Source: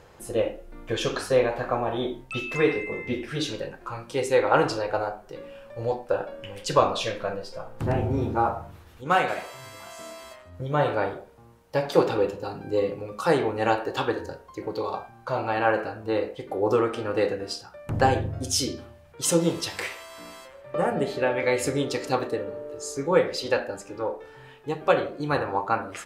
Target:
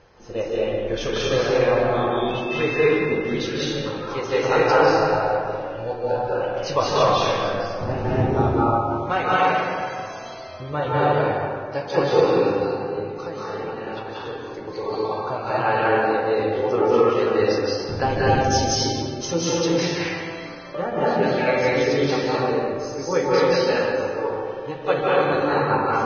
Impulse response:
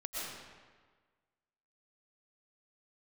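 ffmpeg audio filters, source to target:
-filter_complex "[0:a]asettb=1/sr,asplit=3[s0][s1][s2];[s0]atrim=end=12.574[s3];[s1]atrim=start=12.57:end=14.61,asetpts=PTS-STARTPTS,afade=t=in:d=0.004:c=qsin,afade=t=out:st=2.036:d=0.004:c=qsin,acompressor=threshold=0.0178:ratio=4[s4];[s2]atrim=start=14.606[s5];[s3][s4]acrossfade=d=0.004:c1=hsin:c2=qsin[s6];[s6][s5]acrossfade=d=0.004:c1=qsin:c2=hsin[s7];[1:a]atrim=start_sample=2205,asetrate=29547,aresample=44100[s8];[s7][s8]afir=irnorm=-1:irlink=0" -ar 16000 -c:a libvorbis -b:a 16k

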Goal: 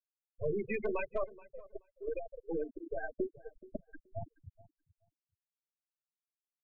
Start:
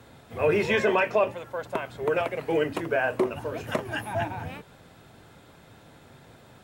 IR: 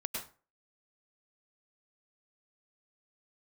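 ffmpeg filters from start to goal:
-filter_complex "[0:a]bandreject=f=60:t=h:w=6,bandreject=f=120:t=h:w=6,bandreject=f=180:t=h:w=6,bandreject=f=240:t=h:w=6,acrossover=split=370|2600[s0][s1][s2];[s1]aeval=exprs='max(val(0),0)':c=same[s3];[s0][s3][s2]amix=inputs=3:normalize=0,afftfilt=real='re*gte(hypot(re,im),0.178)':imag='im*gte(hypot(re,im),0.178)':win_size=1024:overlap=0.75,asoftclip=type=hard:threshold=0.158,lowpass=6800,asplit=2[s4][s5];[s5]adelay=427,lowpass=f=2000:p=1,volume=0.1,asplit=2[s6][s7];[s7]adelay=427,lowpass=f=2000:p=1,volume=0.18[s8];[s6][s8]amix=inputs=2:normalize=0[s9];[s4][s9]amix=inputs=2:normalize=0,volume=0.422"

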